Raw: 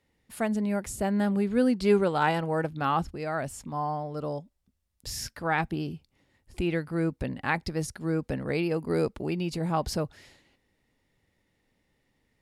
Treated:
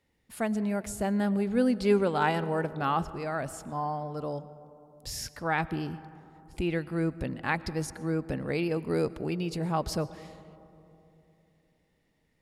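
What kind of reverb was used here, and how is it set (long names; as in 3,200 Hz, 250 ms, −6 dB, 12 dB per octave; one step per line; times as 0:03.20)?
comb and all-pass reverb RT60 3.2 s, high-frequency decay 0.25×, pre-delay 75 ms, DRR 16.5 dB
level −1.5 dB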